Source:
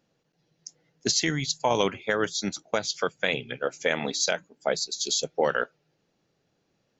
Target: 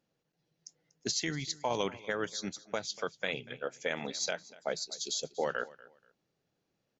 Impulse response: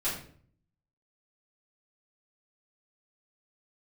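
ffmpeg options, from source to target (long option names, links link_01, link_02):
-af "aecho=1:1:240|480:0.0944|0.0227,volume=-8.5dB"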